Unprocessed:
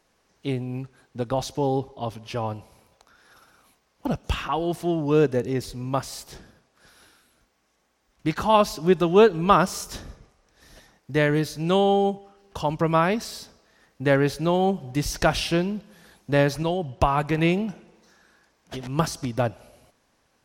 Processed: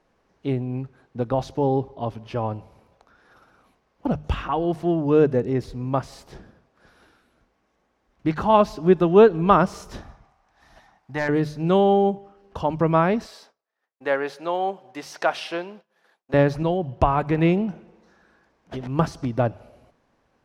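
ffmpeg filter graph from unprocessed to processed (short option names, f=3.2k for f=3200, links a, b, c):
-filter_complex "[0:a]asettb=1/sr,asplit=3[a][b][c];[a]atrim=end=10.014[d];[b]atrim=start=10.01:end=11.29,asetpts=PTS-STARTPTS,afade=t=in:d=0.004:c=qsin,afade=t=out:st=1.276:d=0.004:c=qsin,lowshelf=f=610:t=q:w=3:g=-6.5,aeval=exprs='0.178*(abs(mod(val(0)/0.178+3,4)-2)-1)':c=same[e];[c]atrim=start=11.286[f];[d][e]acrossfade=d=0.004:c1=hsin:c2=qsin[g];[g][f]acrossfade=d=0.004:c1=qsin:c2=hsin,asettb=1/sr,asplit=3[h][i][j];[h]atrim=end=13.264[k];[i]atrim=start=13.26:end=16.34,asetpts=PTS-STARTPTS,afade=t=in:d=0.004:c=qsin,afade=t=out:st=3.076:d=0.004:c=qsin,highpass=600,agate=range=-33dB:threshold=-49dB:ratio=3:release=100:detection=peak[l];[j]atrim=start=16.336[m];[k][l]acrossfade=d=0.004:c1=hsin:c2=qsin[n];[n][m]acrossfade=d=0.004:c1=qsin:c2=hsin,lowpass=f=1.3k:p=1,bandreject=f=50:t=h:w=6,bandreject=f=100:t=h:w=6,bandreject=f=150:t=h:w=6,volume=3dB"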